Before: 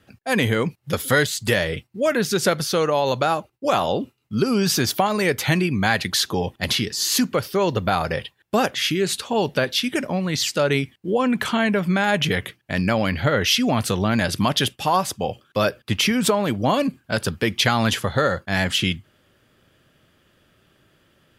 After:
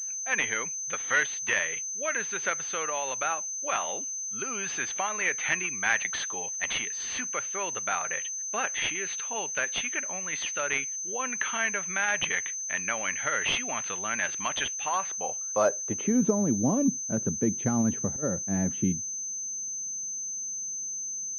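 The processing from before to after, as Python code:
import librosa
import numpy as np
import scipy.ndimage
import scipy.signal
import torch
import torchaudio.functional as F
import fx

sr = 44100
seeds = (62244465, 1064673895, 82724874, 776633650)

y = fx.filter_sweep_bandpass(x, sr, from_hz=2300.0, to_hz=230.0, start_s=14.97, end_s=16.36, q=1.4)
y = fx.auto_swell(y, sr, attack_ms=270.0, at=(17.81, 18.22), fade=0.02)
y = fx.pwm(y, sr, carrier_hz=6200.0)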